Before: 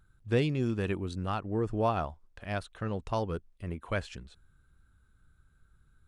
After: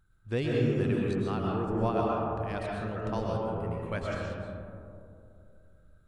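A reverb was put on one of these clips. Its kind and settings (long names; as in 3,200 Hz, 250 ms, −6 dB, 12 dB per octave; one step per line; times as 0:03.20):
comb and all-pass reverb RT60 2.7 s, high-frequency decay 0.25×, pre-delay 85 ms, DRR −3.5 dB
level −4 dB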